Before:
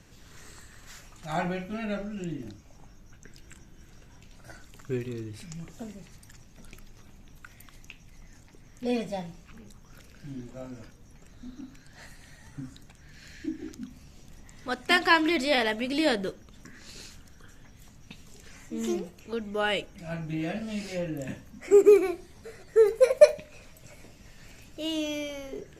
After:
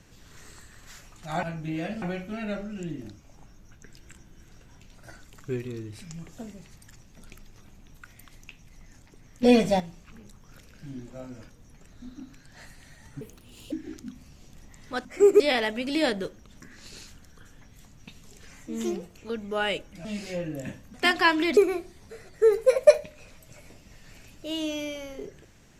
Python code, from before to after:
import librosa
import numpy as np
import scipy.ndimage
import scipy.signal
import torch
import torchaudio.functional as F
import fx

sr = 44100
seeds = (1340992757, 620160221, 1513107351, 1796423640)

y = fx.edit(x, sr, fx.clip_gain(start_s=8.84, length_s=0.37, db=10.5),
    fx.speed_span(start_s=12.62, length_s=0.85, speed=1.67),
    fx.swap(start_s=14.8, length_s=0.63, other_s=21.56, other_length_s=0.35),
    fx.move(start_s=20.08, length_s=0.59, to_s=1.43), tone=tone)